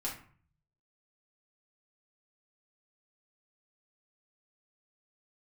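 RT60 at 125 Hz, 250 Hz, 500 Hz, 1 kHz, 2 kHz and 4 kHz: 1.0, 0.60, 0.45, 0.50, 0.45, 0.30 seconds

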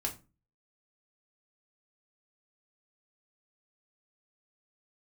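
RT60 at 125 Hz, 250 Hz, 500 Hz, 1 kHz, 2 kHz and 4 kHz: 0.50, 0.45, 0.30, 0.30, 0.25, 0.20 seconds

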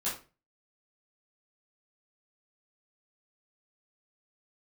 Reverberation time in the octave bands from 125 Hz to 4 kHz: 0.45, 0.40, 0.35, 0.30, 0.30, 0.25 seconds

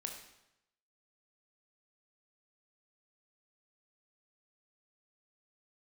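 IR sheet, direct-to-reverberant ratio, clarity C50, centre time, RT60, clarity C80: 2.5 dB, 6.0 dB, 28 ms, 0.85 s, 8.5 dB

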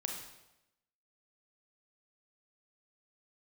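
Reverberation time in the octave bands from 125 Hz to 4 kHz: 0.95, 0.95, 0.95, 0.90, 0.85, 0.80 seconds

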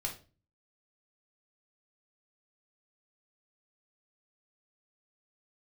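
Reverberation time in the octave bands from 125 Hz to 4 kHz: 0.65, 0.55, 0.40, 0.30, 0.30, 0.30 seconds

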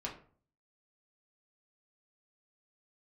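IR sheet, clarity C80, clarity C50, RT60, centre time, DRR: 14.0 dB, 9.5 dB, 0.45 s, 20 ms, −3.5 dB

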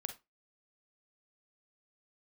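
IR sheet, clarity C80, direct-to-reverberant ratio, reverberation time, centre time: 20.5 dB, 7.0 dB, 0.20 s, 9 ms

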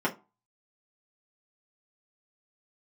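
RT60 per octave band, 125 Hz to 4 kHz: 0.30, 0.30, 0.25, 0.30, 0.20, 0.15 seconds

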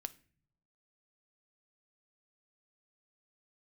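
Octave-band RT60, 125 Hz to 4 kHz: 1.1, 0.95, 0.60, 0.40, 0.50, 0.35 seconds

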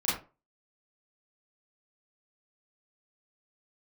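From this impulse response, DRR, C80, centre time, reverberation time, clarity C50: −10.0 dB, 10.0 dB, 47 ms, 0.30 s, 4.0 dB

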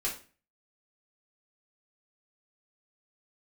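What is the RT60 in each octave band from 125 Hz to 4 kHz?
0.50, 0.45, 0.40, 0.35, 0.35, 0.35 seconds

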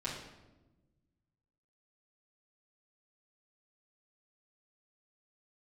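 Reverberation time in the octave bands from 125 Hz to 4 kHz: 2.1, 1.8, 1.2, 0.95, 0.85, 0.75 seconds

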